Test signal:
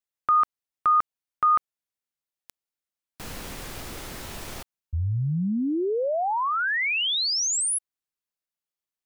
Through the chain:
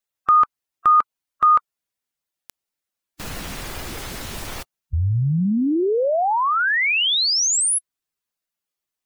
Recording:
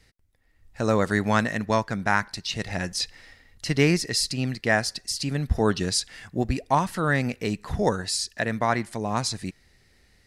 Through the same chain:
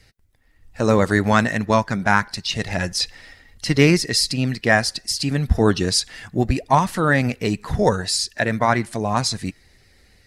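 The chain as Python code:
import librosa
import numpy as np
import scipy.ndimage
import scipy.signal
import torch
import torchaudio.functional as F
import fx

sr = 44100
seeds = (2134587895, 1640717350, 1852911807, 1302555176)

y = fx.spec_quant(x, sr, step_db=15)
y = F.gain(torch.from_numpy(y), 6.0).numpy()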